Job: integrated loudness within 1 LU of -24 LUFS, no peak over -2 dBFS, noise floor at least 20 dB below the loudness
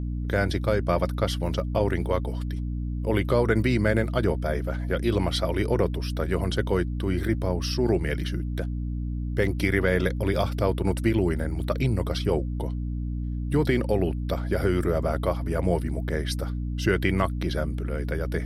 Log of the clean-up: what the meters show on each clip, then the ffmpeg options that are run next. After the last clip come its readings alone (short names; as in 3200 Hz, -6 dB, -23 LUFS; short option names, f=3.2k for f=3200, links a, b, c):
hum 60 Hz; harmonics up to 300 Hz; hum level -27 dBFS; loudness -26.5 LUFS; peak -7.5 dBFS; loudness target -24.0 LUFS
-> -af "bandreject=f=60:t=h:w=4,bandreject=f=120:t=h:w=4,bandreject=f=180:t=h:w=4,bandreject=f=240:t=h:w=4,bandreject=f=300:t=h:w=4"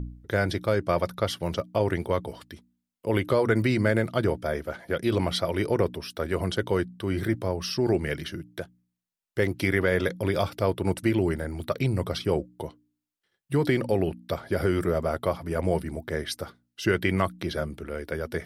hum none; loudness -27.5 LUFS; peak -8.0 dBFS; loudness target -24.0 LUFS
-> -af "volume=3.5dB"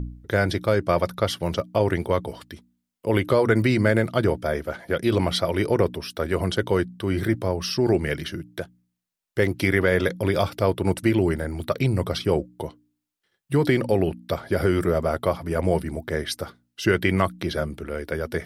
loudness -24.0 LUFS; peak -4.5 dBFS; noise floor -80 dBFS